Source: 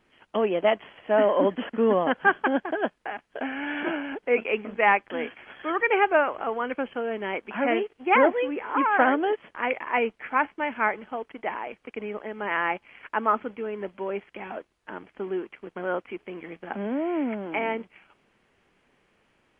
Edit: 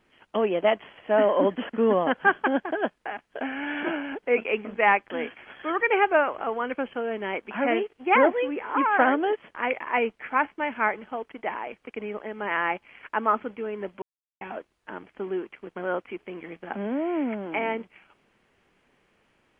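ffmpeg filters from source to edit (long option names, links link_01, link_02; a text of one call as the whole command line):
ffmpeg -i in.wav -filter_complex "[0:a]asplit=3[link_01][link_02][link_03];[link_01]atrim=end=14.02,asetpts=PTS-STARTPTS,afade=type=out:start_time=14.016:duration=0.004:curve=hsin[link_04];[link_02]atrim=start=14.02:end=14.41,asetpts=PTS-STARTPTS,volume=0[link_05];[link_03]atrim=start=14.41,asetpts=PTS-STARTPTS,afade=type=in:duration=0.004:curve=hsin[link_06];[link_04][link_05][link_06]concat=n=3:v=0:a=1" out.wav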